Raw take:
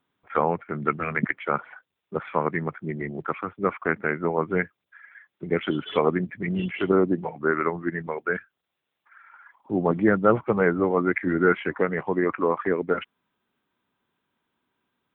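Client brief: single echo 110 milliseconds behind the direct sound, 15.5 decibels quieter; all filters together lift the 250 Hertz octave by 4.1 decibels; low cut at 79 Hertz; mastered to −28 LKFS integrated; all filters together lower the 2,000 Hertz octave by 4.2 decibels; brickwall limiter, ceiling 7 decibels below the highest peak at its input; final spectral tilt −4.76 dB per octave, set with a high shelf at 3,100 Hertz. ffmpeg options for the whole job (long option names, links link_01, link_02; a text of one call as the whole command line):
ffmpeg -i in.wav -af "highpass=79,equalizer=frequency=250:width_type=o:gain=6,equalizer=frequency=2000:width_type=o:gain=-4.5,highshelf=frequency=3100:gain=-4.5,alimiter=limit=-10.5dB:level=0:latency=1,aecho=1:1:110:0.168,volume=-3dB" out.wav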